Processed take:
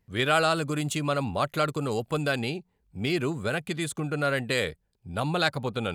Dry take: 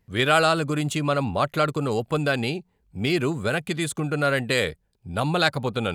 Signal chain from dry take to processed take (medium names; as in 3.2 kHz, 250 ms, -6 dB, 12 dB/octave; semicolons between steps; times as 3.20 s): 0.51–2.39 s: treble shelf 4.7 kHz +5 dB; trim -4 dB